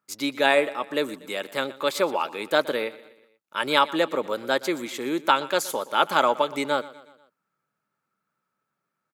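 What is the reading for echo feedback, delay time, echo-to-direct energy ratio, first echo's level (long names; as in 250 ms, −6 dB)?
51%, 121 ms, −17.0 dB, −18.5 dB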